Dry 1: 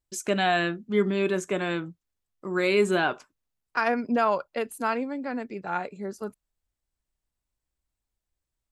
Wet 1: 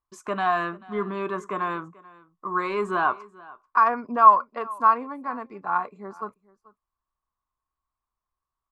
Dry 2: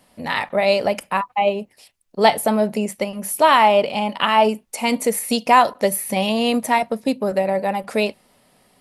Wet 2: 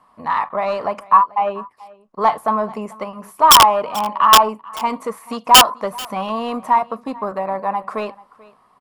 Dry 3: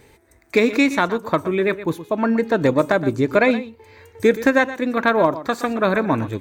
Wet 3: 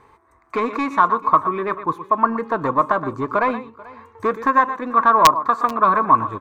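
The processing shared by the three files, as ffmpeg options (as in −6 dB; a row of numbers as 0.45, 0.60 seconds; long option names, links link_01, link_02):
-filter_complex "[0:a]aemphasis=mode=production:type=75fm,bandreject=frequency=550:width=14,asoftclip=type=tanh:threshold=-11dB,crystalizer=i=5.5:c=0,lowpass=frequency=1100:width_type=q:width=12,aeval=exprs='(mod(0.631*val(0)+1,2)-1)/0.631':channel_layout=same,asplit=2[link_01][link_02];[link_02]aecho=0:1:437:0.0794[link_03];[link_01][link_03]amix=inputs=2:normalize=0,volume=-5.5dB"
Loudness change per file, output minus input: +3.5, +3.5, +1.0 LU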